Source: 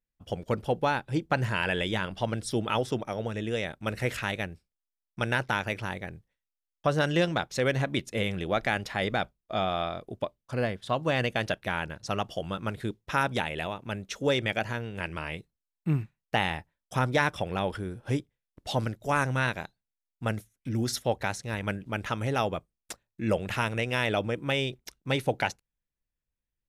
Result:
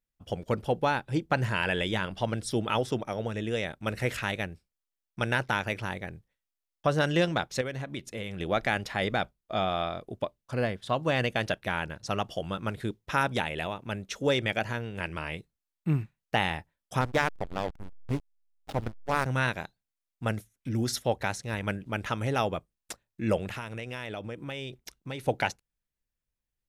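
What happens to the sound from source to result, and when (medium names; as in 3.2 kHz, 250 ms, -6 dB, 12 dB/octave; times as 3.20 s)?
7.61–8.40 s: compression 2:1, threshold -38 dBFS
17.01–19.26 s: hysteresis with a dead band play -23 dBFS
23.47–25.28 s: compression 3:1, threshold -36 dBFS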